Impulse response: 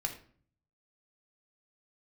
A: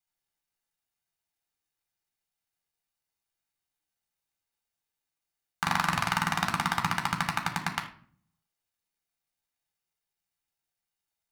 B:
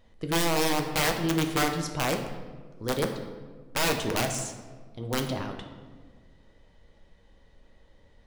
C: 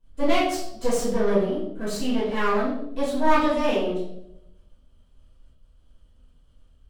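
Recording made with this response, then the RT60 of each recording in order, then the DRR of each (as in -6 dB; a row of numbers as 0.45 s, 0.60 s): A; 0.50 s, 1.6 s, 0.80 s; 3.0 dB, 4.0 dB, -12.0 dB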